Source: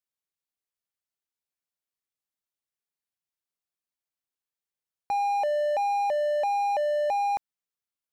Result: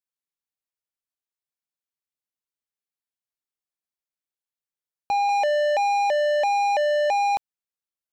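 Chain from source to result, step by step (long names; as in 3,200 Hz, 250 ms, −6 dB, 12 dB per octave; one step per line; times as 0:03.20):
0:05.29–0:07.35: high-pass filter 180 Hz 24 dB per octave
leveller curve on the samples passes 3
level +1.5 dB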